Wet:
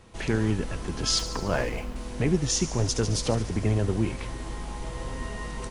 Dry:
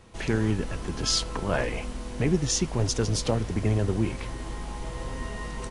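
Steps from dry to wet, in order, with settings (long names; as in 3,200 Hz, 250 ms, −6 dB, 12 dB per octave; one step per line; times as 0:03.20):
0:01.19–0:01.96: running median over 9 samples
delay with a high-pass on its return 72 ms, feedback 70%, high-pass 4,200 Hz, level −10.5 dB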